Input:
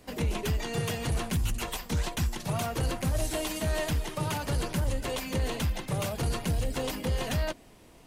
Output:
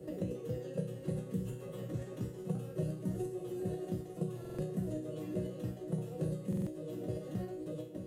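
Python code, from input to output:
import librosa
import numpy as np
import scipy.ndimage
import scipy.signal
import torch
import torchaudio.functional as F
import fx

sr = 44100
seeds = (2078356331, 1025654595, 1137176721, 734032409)

y = fx.peak_eq(x, sr, hz=210.0, db=-10.5, octaves=0.21)
y = fx.echo_feedback(y, sr, ms=904, feedback_pct=35, wet_db=-10.0)
y = fx.pitch_keep_formants(y, sr, semitones=2.5)
y = fx.curve_eq(y, sr, hz=(190.0, 490.0, 850.0, 2300.0, 4800.0, 7800.0), db=(0, 2, -19, -18, -23, -17))
y = fx.level_steps(y, sr, step_db=15)
y = scipy.signal.sosfilt(scipy.signal.butter(2, 140.0, 'highpass', fs=sr, output='sos'), y)
y = fx.notch(y, sr, hz=2300.0, q=6.1)
y = fx.resonator_bank(y, sr, root=47, chord='major', decay_s=0.43)
y = fx.buffer_glitch(y, sr, at_s=(4.4, 6.48), block=2048, repeats=3)
y = fx.band_squash(y, sr, depth_pct=70)
y = F.gain(torch.from_numpy(y), 18.0).numpy()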